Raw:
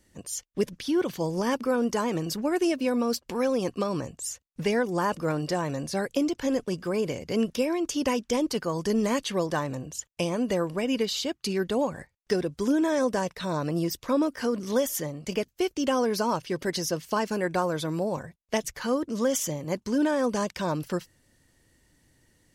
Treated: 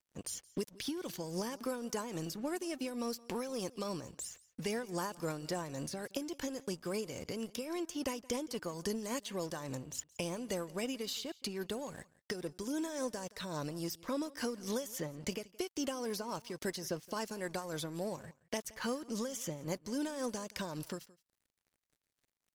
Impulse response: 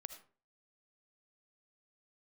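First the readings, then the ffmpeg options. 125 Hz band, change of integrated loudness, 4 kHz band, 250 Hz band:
−11.0 dB, −11.5 dB, −8.0 dB, −12.5 dB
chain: -filter_complex "[0:a]acrossover=split=3900|8000[link_01][link_02][link_03];[link_01]acompressor=threshold=-39dB:ratio=4[link_04];[link_02]acompressor=threshold=-50dB:ratio=4[link_05];[link_03]acompressor=threshold=-50dB:ratio=4[link_06];[link_04][link_05][link_06]amix=inputs=3:normalize=0,aeval=exprs='sgn(val(0))*max(abs(val(0))-0.00141,0)':channel_layout=same,tremolo=f=3.6:d=0.51,aecho=1:1:171:0.0794,volume=3.5dB"

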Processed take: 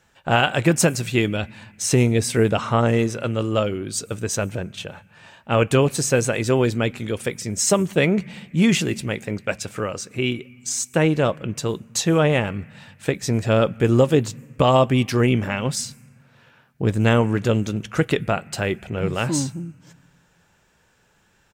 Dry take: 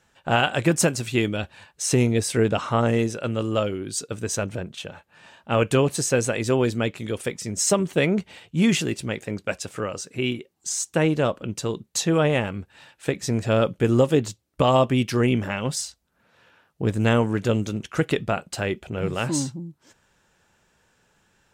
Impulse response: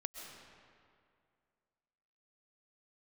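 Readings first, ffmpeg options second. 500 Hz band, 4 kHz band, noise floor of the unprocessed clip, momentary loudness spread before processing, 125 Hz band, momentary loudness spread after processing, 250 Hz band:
+2.0 dB, +2.0 dB, −67 dBFS, 10 LU, +3.5 dB, 10 LU, +2.0 dB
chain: -filter_complex "[0:a]asplit=2[link_01][link_02];[link_02]firequalizer=gain_entry='entry(220,0);entry(320,-19);entry(2300,0);entry(3600,-23);entry(13000,10)':delay=0.05:min_phase=1[link_03];[1:a]atrim=start_sample=2205,asetrate=52920,aresample=44100[link_04];[link_03][link_04]afir=irnorm=-1:irlink=0,volume=-8.5dB[link_05];[link_01][link_05]amix=inputs=2:normalize=0,volume=2dB"

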